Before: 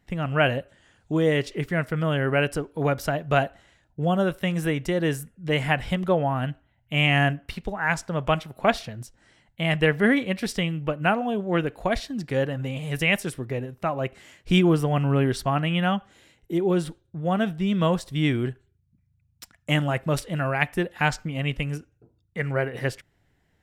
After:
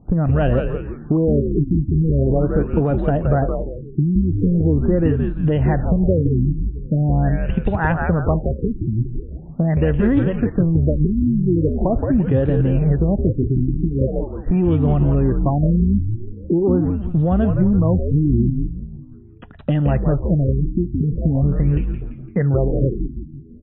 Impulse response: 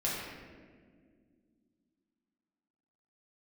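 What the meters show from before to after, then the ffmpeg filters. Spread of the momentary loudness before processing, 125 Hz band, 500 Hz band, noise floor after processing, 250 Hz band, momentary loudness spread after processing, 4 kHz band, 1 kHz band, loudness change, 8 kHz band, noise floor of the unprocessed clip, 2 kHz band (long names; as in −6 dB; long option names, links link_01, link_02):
10 LU, +10.0 dB, +4.0 dB, −37 dBFS, +8.0 dB, 8 LU, below −15 dB, −2.0 dB, +6.0 dB, below −35 dB, −68 dBFS, −8.0 dB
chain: -filter_complex "[0:a]tiltshelf=frequency=970:gain=9,acrossover=split=2400[link_01][link_02];[link_01]acontrast=39[link_03];[link_03][link_02]amix=inputs=2:normalize=0,alimiter=limit=-12dB:level=0:latency=1:release=439,acompressor=threshold=-20dB:ratio=6,asuperstop=centerf=2200:order=4:qfactor=7,asplit=2[link_04][link_05];[link_05]asplit=6[link_06][link_07][link_08][link_09][link_10][link_11];[link_06]adelay=170,afreqshift=-92,volume=-4dB[link_12];[link_07]adelay=340,afreqshift=-184,volume=-11.1dB[link_13];[link_08]adelay=510,afreqshift=-276,volume=-18.3dB[link_14];[link_09]adelay=680,afreqshift=-368,volume=-25.4dB[link_15];[link_10]adelay=850,afreqshift=-460,volume=-32.5dB[link_16];[link_11]adelay=1020,afreqshift=-552,volume=-39.7dB[link_17];[link_12][link_13][link_14][link_15][link_16][link_17]amix=inputs=6:normalize=0[link_18];[link_04][link_18]amix=inputs=2:normalize=0,afftfilt=real='re*lt(b*sr/1024,360*pow(4000/360,0.5+0.5*sin(2*PI*0.42*pts/sr)))':imag='im*lt(b*sr/1024,360*pow(4000/360,0.5+0.5*sin(2*PI*0.42*pts/sr)))':win_size=1024:overlap=0.75,volume=6dB"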